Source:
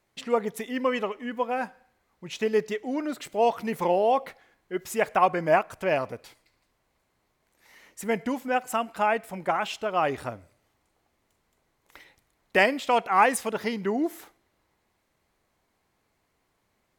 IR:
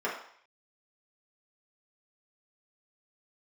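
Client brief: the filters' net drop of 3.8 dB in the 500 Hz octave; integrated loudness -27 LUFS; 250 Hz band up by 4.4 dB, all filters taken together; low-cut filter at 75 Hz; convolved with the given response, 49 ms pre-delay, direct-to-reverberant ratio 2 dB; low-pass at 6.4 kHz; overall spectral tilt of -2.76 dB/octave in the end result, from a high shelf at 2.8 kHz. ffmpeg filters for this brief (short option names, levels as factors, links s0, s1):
-filter_complex "[0:a]highpass=75,lowpass=6400,equalizer=f=250:t=o:g=7,equalizer=f=500:t=o:g=-7,highshelf=f=2800:g=8.5,asplit=2[s0][s1];[1:a]atrim=start_sample=2205,adelay=49[s2];[s1][s2]afir=irnorm=-1:irlink=0,volume=0.282[s3];[s0][s3]amix=inputs=2:normalize=0,volume=0.75"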